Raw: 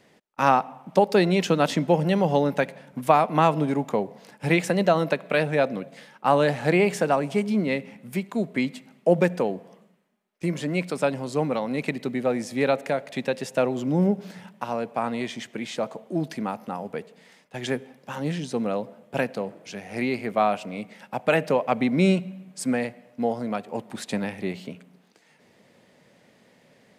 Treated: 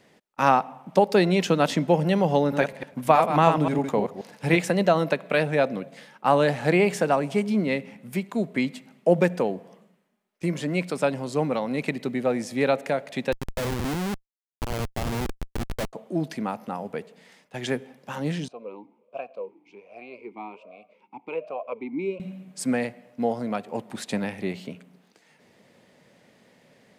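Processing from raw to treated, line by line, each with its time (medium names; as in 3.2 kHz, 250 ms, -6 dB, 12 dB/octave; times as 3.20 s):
2.41–4.57 s: chunks repeated in reverse 106 ms, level -6 dB
13.32–15.93 s: Schmitt trigger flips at -26.5 dBFS
18.48–22.20 s: talking filter a-u 1.3 Hz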